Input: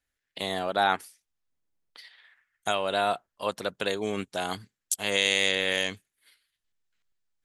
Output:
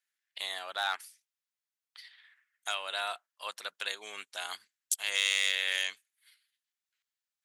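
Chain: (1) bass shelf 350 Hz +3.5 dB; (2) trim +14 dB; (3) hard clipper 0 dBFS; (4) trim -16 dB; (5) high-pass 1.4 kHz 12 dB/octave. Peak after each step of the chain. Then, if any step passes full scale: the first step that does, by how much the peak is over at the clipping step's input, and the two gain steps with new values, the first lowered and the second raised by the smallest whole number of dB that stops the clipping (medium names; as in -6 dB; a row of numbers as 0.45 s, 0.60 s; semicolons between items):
-8.0 dBFS, +6.0 dBFS, 0.0 dBFS, -16.0 dBFS, -13.0 dBFS; step 2, 6.0 dB; step 2 +8 dB, step 4 -10 dB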